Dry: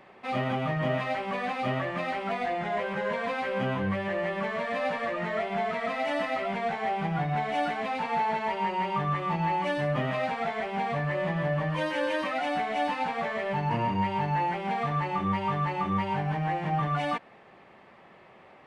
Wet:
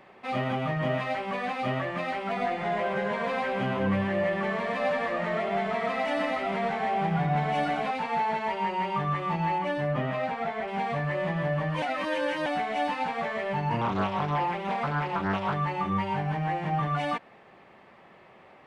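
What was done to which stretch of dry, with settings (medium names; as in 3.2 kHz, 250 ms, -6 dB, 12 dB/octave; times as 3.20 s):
2.26–7.91 s: echo whose repeats swap between lows and highs 102 ms, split 1.3 kHz, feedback 59%, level -3.5 dB
9.58–10.68 s: treble shelf 3.2 kHz -8 dB
11.82–12.46 s: reverse
13.81–15.54 s: loudspeaker Doppler distortion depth 0.67 ms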